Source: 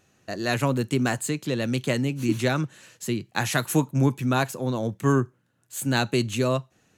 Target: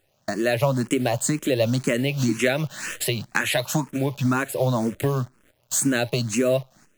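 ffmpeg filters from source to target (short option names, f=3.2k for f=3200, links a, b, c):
-filter_complex "[0:a]asettb=1/sr,asplit=3[a][b][c];[a]atrim=end=1.984[d];[b]atrim=start=1.98:end=4.28,asetpts=PTS-STARTPTS,afade=t=in:d=0.004:c=qsin,afade=t=out:st=2.296:d=0.004:c=qsin,equalizer=f=2.5k:w=0.43:g=6[e];[c]atrim=start=4.276[f];[d][e]acrossfade=d=0.004:c1=hsin:c2=qsin[g];[g][f]acrossfade=d=0.004:c1=qsin:c2=hsin,apsyclip=9.5dB,acrusher=bits=7:dc=4:mix=0:aa=0.000001,agate=range=-12dB:threshold=-48dB:ratio=16:detection=peak,acompressor=threshold=-27dB:ratio=6,equalizer=f=600:w=5.7:g=9,acrusher=bits=6:mode=log:mix=0:aa=0.000001,dynaudnorm=f=320:g=3:m=5dB,asplit=2[h][i];[i]afreqshift=2[j];[h][j]amix=inputs=2:normalize=1,volume=4dB"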